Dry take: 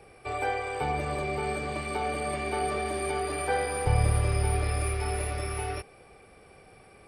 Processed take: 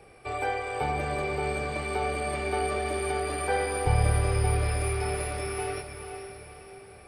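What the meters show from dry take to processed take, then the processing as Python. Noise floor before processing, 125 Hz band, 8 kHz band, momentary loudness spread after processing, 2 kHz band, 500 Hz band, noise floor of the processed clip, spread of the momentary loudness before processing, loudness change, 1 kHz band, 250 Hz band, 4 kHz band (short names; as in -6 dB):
-54 dBFS, +0.5 dB, +1.0 dB, 15 LU, +1.5 dB, +1.5 dB, -49 dBFS, 7 LU, +1.0 dB, +0.5 dB, +0.5 dB, +1.0 dB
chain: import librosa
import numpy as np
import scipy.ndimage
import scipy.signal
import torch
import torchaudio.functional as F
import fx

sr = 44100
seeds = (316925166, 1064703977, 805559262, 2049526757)

y = fx.echo_diffused(x, sr, ms=474, feedback_pct=47, wet_db=-8.0)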